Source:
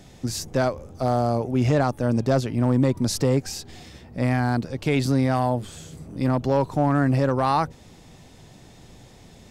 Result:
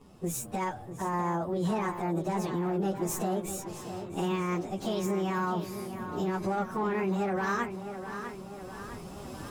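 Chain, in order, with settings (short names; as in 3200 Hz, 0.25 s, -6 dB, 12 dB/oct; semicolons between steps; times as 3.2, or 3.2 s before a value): pitch shift by moving bins +6.5 st; recorder AGC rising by 7.1 dB/s; limiter -20.5 dBFS, peak gain reduction 9 dB; tape echo 0.653 s, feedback 67%, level -8 dB, low-pass 5600 Hz; mismatched tape noise reduction decoder only; gain -2.5 dB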